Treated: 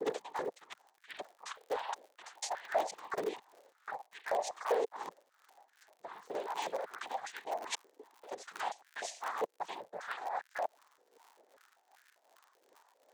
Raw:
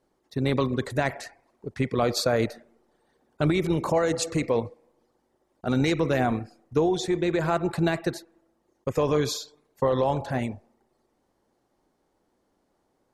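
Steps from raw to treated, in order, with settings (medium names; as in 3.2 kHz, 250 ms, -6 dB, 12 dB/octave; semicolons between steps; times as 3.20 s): slices played last to first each 242 ms, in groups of 4; noise-vocoded speech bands 6; in parallel at -6.5 dB: integer overflow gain 14.5 dB; on the sum: peaking EQ 6.2 kHz +3.5 dB 0.36 oct; reverse; compression 10:1, threshold -35 dBFS, peak gain reduction 20 dB; reverse; crackle 110 per s -49 dBFS; tremolo triangle 2.6 Hz, depth 75%; step-sequenced high-pass 5.1 Hz 460–1600 Hz; trim +1.5 dB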